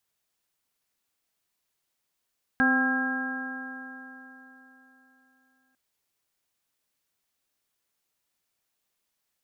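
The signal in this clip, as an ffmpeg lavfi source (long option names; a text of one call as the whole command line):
ffmpeg -f lavfi -i "aevalsrc='0.075*pow(10,-3*t/3.7)*sin(2*PI*258.34*t)+0.015*pow(10,-3*t/3.7)*sin(2*PI*518.68*t)+0.0355*pow(10,-3*t/3.7)*sin(2*PI*783*t)+0.0158*pow(10,-3*t/3.7)*sin(2*PI*1053.25*t)+0.0251*pow(10,-3*t/3.7)*sin(2*PI*1331.26*t)+0.0944*pow(10,-3*t/3.7)*sin(2*PI*1618.83*t)':duration=3.15:sample_rate=44100" out.wav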